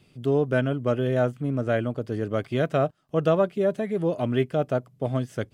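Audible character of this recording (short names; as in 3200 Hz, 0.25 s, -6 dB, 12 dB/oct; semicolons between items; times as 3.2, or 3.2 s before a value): noise floor -60 dBFS; spectral tilt -5.5 dB/oct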